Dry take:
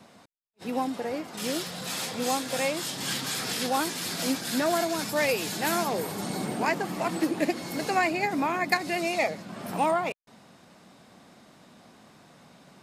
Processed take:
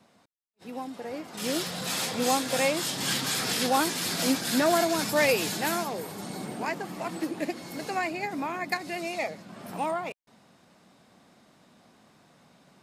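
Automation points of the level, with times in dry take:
0:00.85 −8 dB
0:01.64 +2.5 dB
0:05.44 +2.5 dB
0:05.94 −5 dB

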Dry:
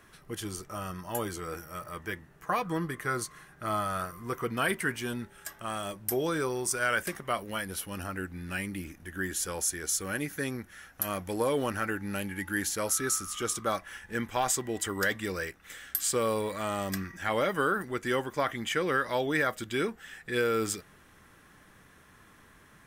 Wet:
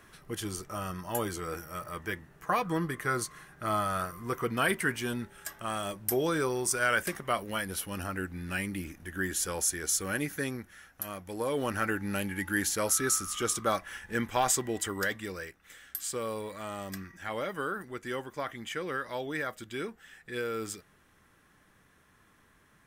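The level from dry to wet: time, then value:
0:10.30 +1 dB
0:11.21 −7.5 dB
0:11.82 +1.5 dB
0:14.60 +1.5 dB
0:15.48 −6.5 dB

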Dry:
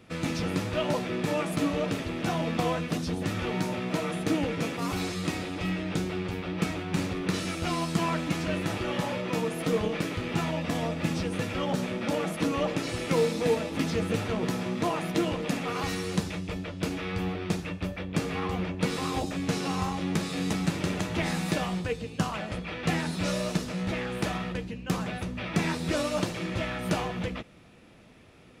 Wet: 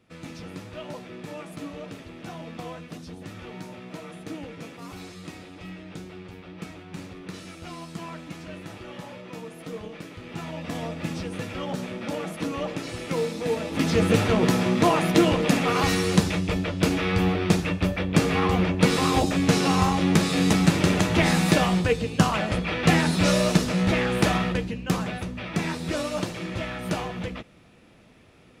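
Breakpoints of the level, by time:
0:10.14 −9.5 dB
0:10.75 −2 dB
0:13.45 −2 dB
0:14.04 +8.5 dB
0:24.38 +8.5 dB
0:25.44 0 dB

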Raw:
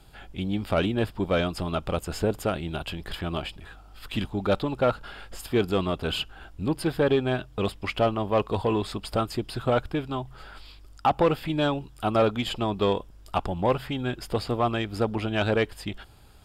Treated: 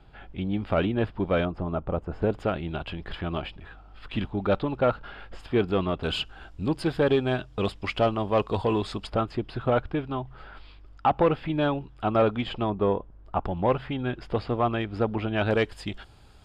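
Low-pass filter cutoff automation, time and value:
2,600 Hz
from 0:01.45 1,100 Hz
from 0:02.22 2,900 Hz
from 0:06.03 7,000 Hz
from 0:09.07 2,700 Hz
from 0:12.70 1,300 Hz
from 0:13.45 2,800 Hz
from 0:15.51 7,500 Hz

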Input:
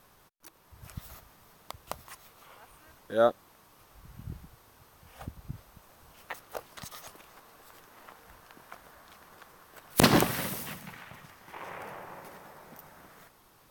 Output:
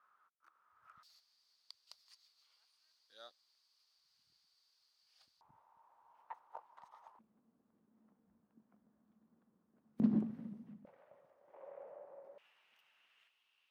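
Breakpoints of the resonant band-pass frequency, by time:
resonant band-pass, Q 8.5
1,300 Hz
from 0:01.03 4,600 Hz
from 0:05.41 920 Hz
from 0:07.19 220 Hz
from 0:10.85 560 Hz
from 0:12.38 2,800 Hz

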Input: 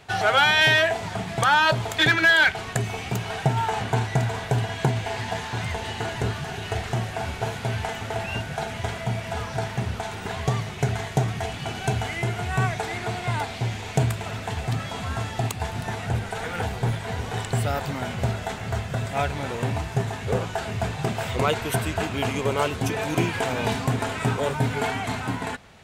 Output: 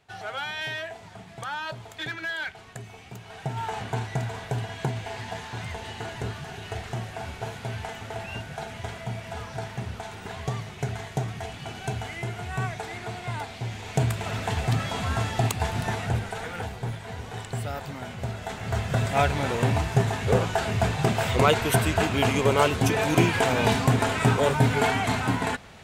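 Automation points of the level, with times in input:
0:03.22 −14.5 dB
0:03.66 −6 dB
0:13.63 −6 dB
0:14.39 +2 dB
0:15.87 +2 dB
0:16.78 −7 dB
0:18.27 −7 dB
0:18.95 +3 dB

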